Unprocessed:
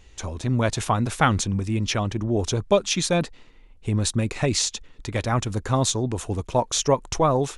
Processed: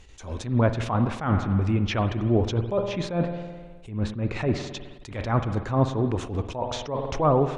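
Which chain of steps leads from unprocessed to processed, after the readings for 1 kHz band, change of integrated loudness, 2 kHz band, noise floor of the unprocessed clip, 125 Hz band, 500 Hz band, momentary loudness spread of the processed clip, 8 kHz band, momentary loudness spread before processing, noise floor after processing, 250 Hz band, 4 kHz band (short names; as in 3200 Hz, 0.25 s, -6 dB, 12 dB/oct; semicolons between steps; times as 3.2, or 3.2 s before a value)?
-3.0 dB, -2.0 dB, -5.5 dB, -51 dBFS, 0.0 dB, -2.0 dB, 13 LU, -18.5 dB, 8 LU, -45 dBFS, 0.0 dB, -10.0 dB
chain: treble ducked by the level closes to 1400 Hz, closed at -18.5 dBFS; spring tank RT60 1.5 s, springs 52 ms, chirp 50 ms, DRR 10.5 dB; attack slew limiter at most 120 dB/s; gain +1.5 dB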